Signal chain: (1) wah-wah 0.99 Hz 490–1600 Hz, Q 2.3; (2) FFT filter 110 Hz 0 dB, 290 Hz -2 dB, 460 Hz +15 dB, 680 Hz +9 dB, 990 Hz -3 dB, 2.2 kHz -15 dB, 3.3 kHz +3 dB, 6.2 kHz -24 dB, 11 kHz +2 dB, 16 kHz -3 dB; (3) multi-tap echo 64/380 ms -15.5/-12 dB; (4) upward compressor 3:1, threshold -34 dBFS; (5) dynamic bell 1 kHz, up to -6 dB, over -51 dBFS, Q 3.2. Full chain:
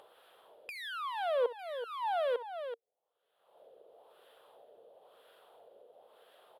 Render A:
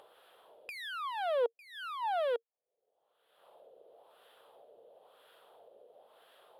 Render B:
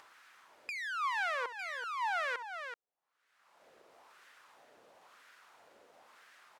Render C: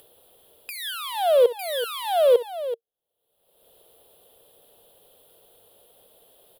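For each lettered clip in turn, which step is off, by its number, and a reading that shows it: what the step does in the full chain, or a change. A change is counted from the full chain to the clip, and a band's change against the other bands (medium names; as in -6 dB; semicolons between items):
3, momentary loudness spread change -1 LU; 2, 500 Hz band -12.5 dB; 1, 2 kHz band -8.0 dB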